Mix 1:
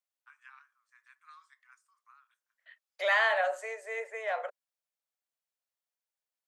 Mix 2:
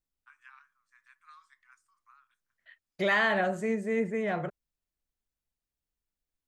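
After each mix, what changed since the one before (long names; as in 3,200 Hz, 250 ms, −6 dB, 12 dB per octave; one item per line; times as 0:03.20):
second voice: remove Butterworth high-pass 490 Hz 72 dB per octave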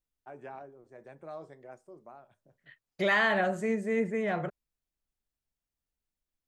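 first voice: remove Butterworth high-pass 1,100 Hz 72 dB per octave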